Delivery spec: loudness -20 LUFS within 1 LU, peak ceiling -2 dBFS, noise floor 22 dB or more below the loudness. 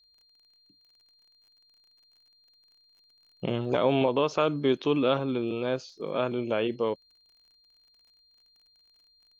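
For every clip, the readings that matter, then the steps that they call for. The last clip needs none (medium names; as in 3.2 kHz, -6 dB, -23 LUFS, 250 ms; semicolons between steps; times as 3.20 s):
tick rate 33 per s; steady tone 4.2 kHz; tone level -61 dBFS; loudness -28.0 LUFS; peak level -12.0 dBFS; loudness target -20.0 LUFS
-> de-click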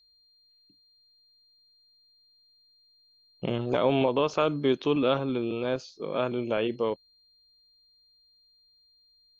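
tick rate 0 per s; steady tone 4.2 kHz; tone level -61 dBFS
-> band-stop 4.2 kHz, Q 30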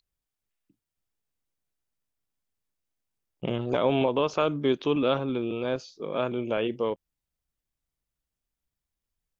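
steady tone not found; loudness -27.5 LUFS; peak level -12.0 dBFS; loudness target -20.0 LUFS
-> trim +7.5 dB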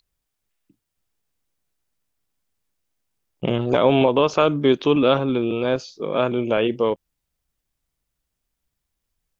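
loudness -20.0 LUFS; peak level -4.5 dBFS; noise floor -80 dBFS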